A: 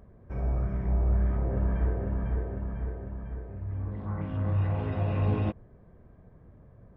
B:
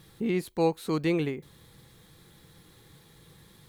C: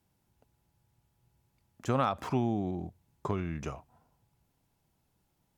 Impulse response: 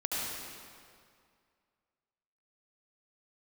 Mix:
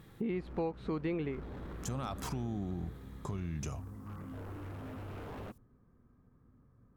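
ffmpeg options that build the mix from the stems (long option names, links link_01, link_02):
-filter_complex "[0:a]equalizer=frequency=125:width_type=o:width=0.33:gain=4,equalizer=frequency=250:width_type=o:width=0.33:gain=11,equalizer=frequency=630:width_type=o:width=0.33:gain=-10,equalizer=frequency=1250:width_type=o:width=0.33:gain=11,aeval=exprs='0.0501*(abs(mod(val(0)/0.0501+3,4)-2)-1)':channel_layout=same,volume=-13dB[link_01];[1:a]lowpass=2400,volume=-0.5dB,asplit=2[link_02][link_03];[2:a]bass=frequency=250:gain=9,treble=frequency=4000:gain=14,alimiter=limit=-24dB:level=0:latency=1:release=45,volume=-3.5dB[link_04];[link_03]apad=whole_len=245964[link_05];[link_04][link_05]sidechaincompress=threshold=-42dB:ratio=8:attack=16:release=541[link_06];[link_01][link_02][link_06]amix=inputs=3:normalize=0,acompressor=threshold=-33dB:ratio=4"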